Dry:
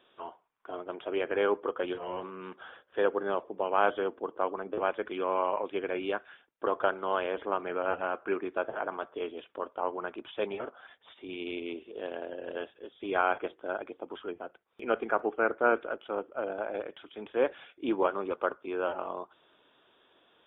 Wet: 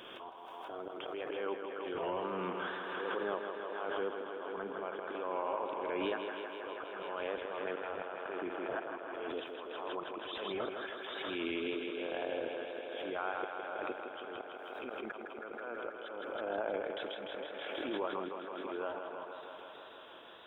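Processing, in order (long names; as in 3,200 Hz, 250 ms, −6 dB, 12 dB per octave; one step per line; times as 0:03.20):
tape wow and flutter 71 cents
downward compressor 6 to 1, threshold −41 dBFS, peak gain reduction 20 dB
volume swells 232 ms
feedback echo with a high-pass in the loop 161 ms, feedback 83%, high-pass 180 Hz, level −6 dB
background raised ahead of every attack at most 21 dB per second
level +7 dB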